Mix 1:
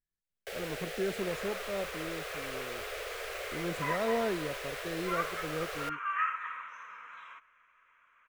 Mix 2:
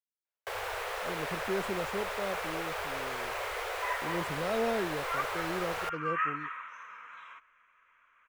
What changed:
speech: entry +0.50 s; first sound: remove static phaser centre 410 Hz, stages 4

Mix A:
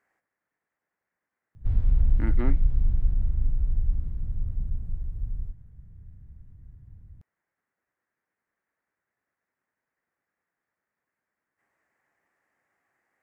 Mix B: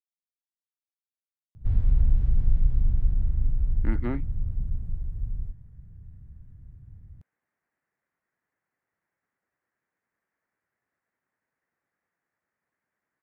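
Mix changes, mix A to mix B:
speech: entry +1.65 s; master: add peaking EQ 130 Hz +2.5 dB 1.4 oct

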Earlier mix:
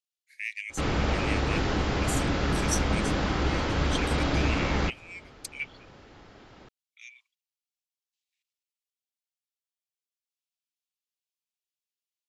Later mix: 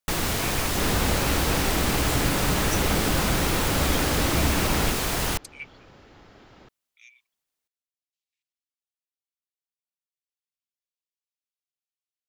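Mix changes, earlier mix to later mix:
speech -4.5 dB; first sound: unmuted

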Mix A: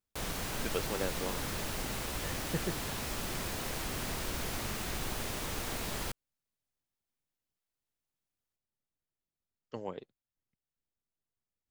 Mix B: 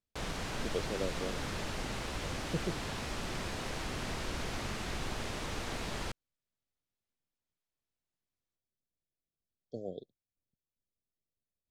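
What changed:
speech: add brick-wall FIR band-stop 750–3200 Hz; master: add Bessel low-pass 5.6 kHz, order 2

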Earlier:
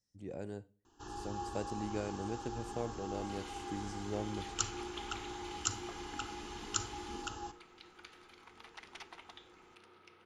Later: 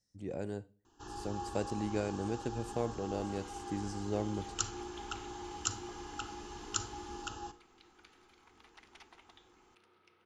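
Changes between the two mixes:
speech +4.0 dB; second sound -7.0 dB

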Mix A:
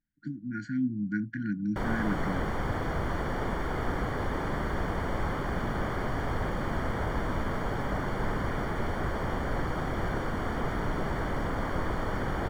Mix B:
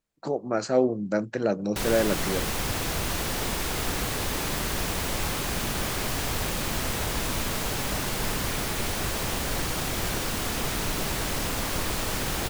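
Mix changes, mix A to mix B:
speech: remove brick-wall FIR band-stop 320–1400 Hz; master: remove Savitzky-Golay filter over 41 samples

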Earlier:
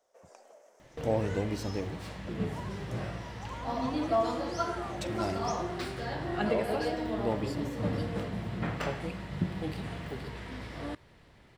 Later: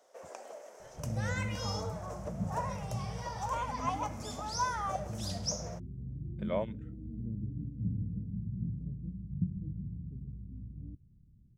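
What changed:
first sound +9.0 dB; second sound: add inverse Chebyshev low-pass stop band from 1.2 kHz, stop band 80 dB

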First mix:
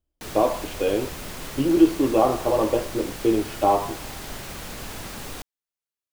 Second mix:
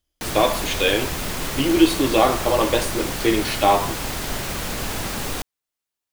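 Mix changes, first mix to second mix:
speech: remove boxcar filter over 23 samples; background +8.5 dB

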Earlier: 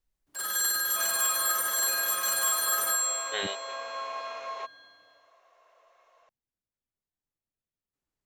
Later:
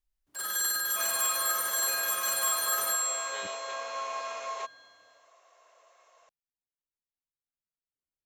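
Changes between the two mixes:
speech -12.0 dB; second sound: remove distance through air 150 m; reverb: off

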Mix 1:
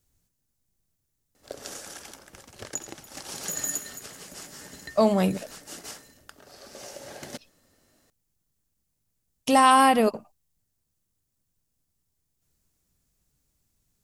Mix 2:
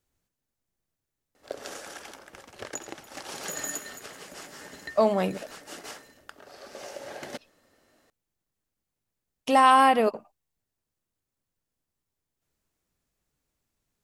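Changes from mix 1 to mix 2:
background +3.5 dB; master: add tone controls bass -9 dB, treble -9 dB

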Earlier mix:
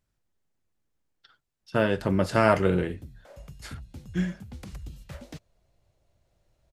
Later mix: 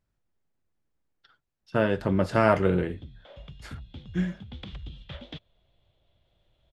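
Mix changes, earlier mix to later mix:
background: add resonant low-pass 3.4 kHz, resonance Q 9.2; master: add treble shelf 4.2 kHz -9 dB

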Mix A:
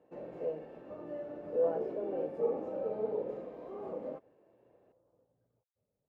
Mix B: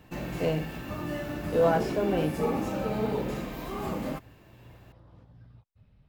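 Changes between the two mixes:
speech +5.5 dB; master: remove band-pass filter 500 Hz, Q 3.4

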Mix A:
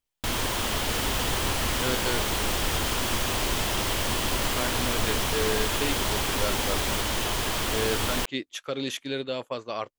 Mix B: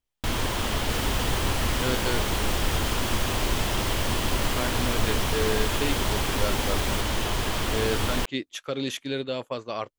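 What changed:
first sound: add treble shelf 4.9 kHz -4.5 dB; master: add bass shelf 240 Hz +4.5 dB

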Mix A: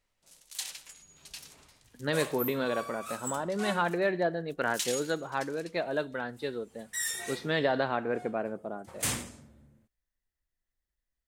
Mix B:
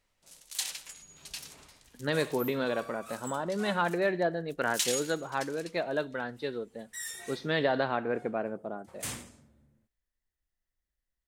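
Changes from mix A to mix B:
first sound +3.5 dB; second sound -6.5 dB

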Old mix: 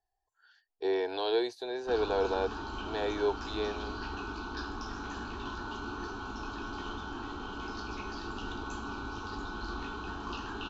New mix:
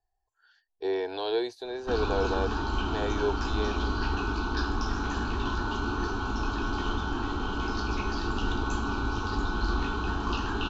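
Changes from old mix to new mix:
background +7.0 dB; master: add bass shelf 140 Hz +7.5 dB

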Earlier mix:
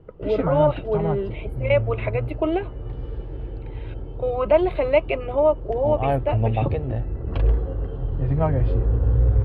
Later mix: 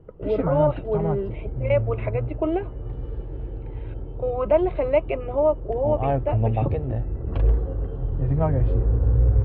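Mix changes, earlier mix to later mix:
background: remove distance through air 130 m; master: add tape spacing loss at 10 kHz 29 dB

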